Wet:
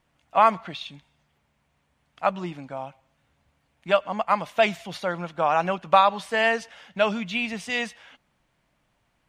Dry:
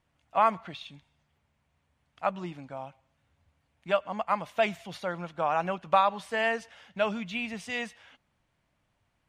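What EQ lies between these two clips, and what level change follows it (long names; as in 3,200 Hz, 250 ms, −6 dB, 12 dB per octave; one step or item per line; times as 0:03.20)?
parametric band 88 Hz −10.5 dB 0.51 octaves
dynamic equaliser 4,600 Hz, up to +4 dB, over −45 dBFS, Q 1.2
+5.5 dB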